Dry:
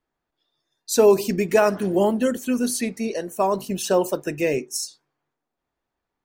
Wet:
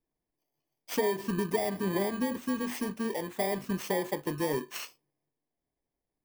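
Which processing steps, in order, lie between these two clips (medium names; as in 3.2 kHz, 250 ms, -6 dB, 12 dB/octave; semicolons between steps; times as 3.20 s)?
bit-reversed sample order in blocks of 32 samples; treble shelf 2.8 kHz -11 dB; compression 6:1, threshold -23 dBFS, peak gain reduction 11 dB; flange 0.78 Hz, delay 6.1 ms, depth 1.1 ms, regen -75%; trim +1.5 dB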